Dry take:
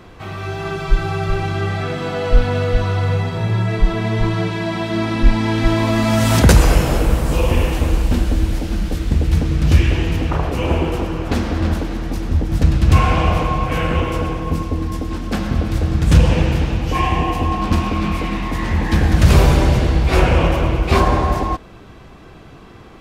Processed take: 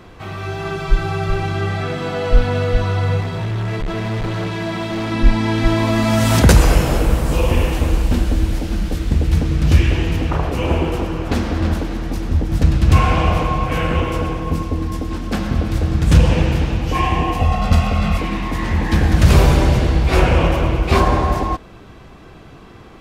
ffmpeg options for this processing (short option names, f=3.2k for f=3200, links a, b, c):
-filter_complex "[0:a]asettb=1/sr,asplit=3[a][b][c];[a]atrim=end=3.204[d];[b]atrim=start=3.2:end=5.12,asetpts=PTS-STARTPTS,afade=t=in:d=0.004:c=qsin,afade=t=out:st=1.916:d=0.004:c=qsin,asoftclip=type=hard:threshold=-19dB[e];[c]atrim=start=5.116[f];[d][e]acrossfade=d=0.004:c1=hsin:c2=qsin[g];[g][f]acrossfade=d=0.004:c1=qsin:c2=hsin,asettb=1/sr,asplit=3[h][i][j];[h]atrim=end=17.404[k];[i]atrim=start=17.4:end=18.18,asetpts=PTS-STARTPTS,afade=t=in:d=0.004:c=qsin,afade=t=out:st=0.776:d=0.004:c=qsin,aecho=1:1:1.5:0.82,atrim=end_sample=34398[l];[j]atrim=start=18.176[m];[k][l]acrossfade=d=0.004:c1=hsin:c2=qsin[n];[n][m]acrossfade=d=0.004:c1=qsin:c2=hsin"